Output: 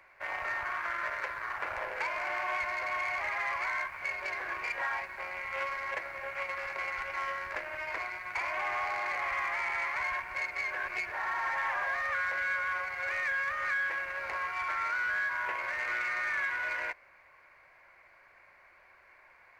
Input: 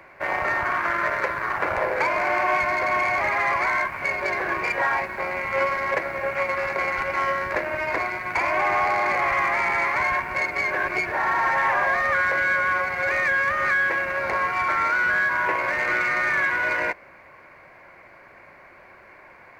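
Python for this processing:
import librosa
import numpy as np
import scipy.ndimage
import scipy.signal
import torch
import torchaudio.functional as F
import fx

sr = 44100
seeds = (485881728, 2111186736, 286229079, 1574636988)

y = fx.peak_eq(x, sr, hz=220.0, db=-14.5, octaves=2.9)
y = fx.doppler_dist(y, sr, depth_ms=0.16)
y = y * 10.0 ** (-8.0 / 20.0)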